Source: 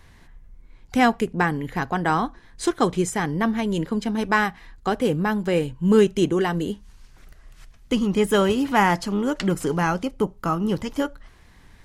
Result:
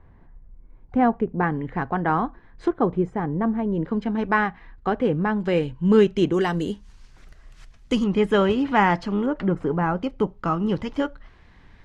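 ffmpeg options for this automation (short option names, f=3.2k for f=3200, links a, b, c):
-af "asetnsamples=n=441:p=0,asendcmd='1.43 lowpass f 1700;2.68 lowpass f 1000;3.85 lowpass f 2100;5.4 lowpass f 3900;6.34 lowpass f 7600;8.04 lowpass f 3100;9.26 lowpass f 1400;10.03 lowpass f 3600',lowpass=1k"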